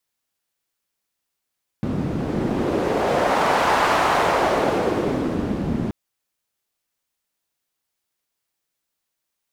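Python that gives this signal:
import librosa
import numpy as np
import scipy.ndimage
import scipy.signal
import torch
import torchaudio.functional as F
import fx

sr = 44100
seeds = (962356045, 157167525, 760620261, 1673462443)

y = fx.wind(sr, seeds[0], length_s=4.08, low_hz=200.0, high_hz=950.0, q=1.4, gusts=1, swing_db=6.0)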